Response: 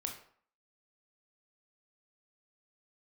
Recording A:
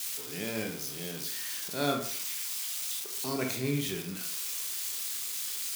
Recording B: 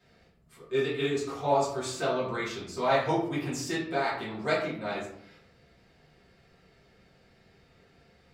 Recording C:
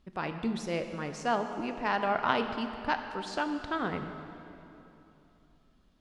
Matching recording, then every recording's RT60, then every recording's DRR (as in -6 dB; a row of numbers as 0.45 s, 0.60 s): A; 0.55 s, 0.75 s, 3.0 s; 2.0 dB, -9.5 dB, 6.5 dB